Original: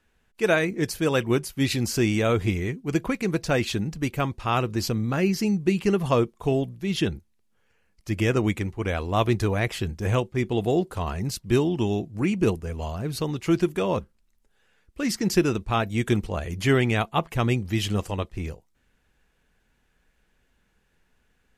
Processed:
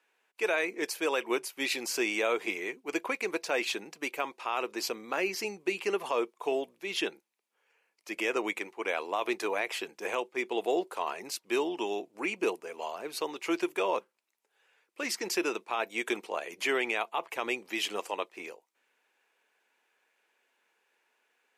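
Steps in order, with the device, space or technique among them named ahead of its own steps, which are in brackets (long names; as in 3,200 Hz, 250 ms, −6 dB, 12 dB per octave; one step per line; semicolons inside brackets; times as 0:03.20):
laptop speaker (high-pass filter 370 Hz 24 dB per octave; parametric band 940 Hz +5 dB 0.48 octaves; parametric band 2,400 Hz +6 dB 0.42 octaves; brickwall limiter −15 dBFS, peak gain reduction 9 dB)
level −3.5 dB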